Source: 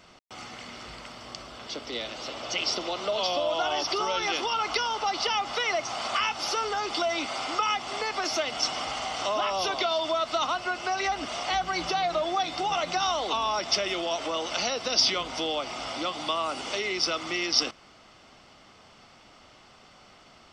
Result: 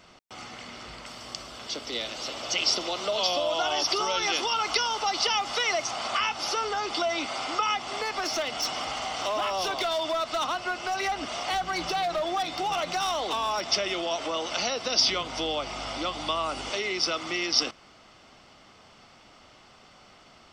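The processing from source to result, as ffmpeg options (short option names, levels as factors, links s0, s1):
-filter_complex "[0:a]asettb=1/sr,asplit=3[s0][s1][s2];[s0]atrim=end=1.064[s3];[s1]atrim=start=1.06:end=5.91,asetpts=PTS-STARTPTS,afade=t=in:d=0.004:c=qsin,afade=t=out:st=4.846:d=0.004:c=qsin,aemphasis=mode=production:type=cd[s4];[s2]atrim=start=5.906[s5];[s3][s4]acrossfade=d=0.004:c1=hsin:c2=qsin[s6];[s6][s5]acrossfade=d=0.004:c1=qsin:c2=hsin,asettb=1/sr,asplit=3[s7][s8][s9];[s7]atrim=end=7.824[s10];[s8]atrim=start=7.82:end=13.65,asetpts=PTS-STARTPTS,afade=t=in:d=0.004:c=qsin,afade=t=out:st=5.826:d=0.004:c=qsin,volume=15,asoftclip=hard,volume=0.0668[s11];[s9]atrim=start=13.646[s12];[s10][s11]acrossfade=d=0.004:c1=hsin:c2=qsin[s13];[s13][s12]acrossfade=d=0.004:c1=qsin:c2=hsin,asettb=1/sr,asplit=3[s14][s15][s16];[s14]atrim=end=15.094[s17];[s15]atrim=start=15.09:end=16.7,asetpts=PTS-STARTPTS,afade=t=in:d=0.004:c=qsin,afade=t=out:st=1.606:d=0.004:c=qsin,aeval=exprs='val(0)+0.00501*(sin(2*PI*50*n/s)+sin(2*PI*2*50*n/s)/2+sin(2*PI*3*50*n/s)/3+sin(2*PI*4*50*n/s)/4+sin(2*PI*5*50*n/s)/5)':c=same[s18];[s16]atrim=start=16.696[s19];[s17][s18]acrossfade=d=0.004:c1=hsin:c2=qsin[s20];[s20][s19]acrossfade=d=0.004:c1=qsin:c2=hsin"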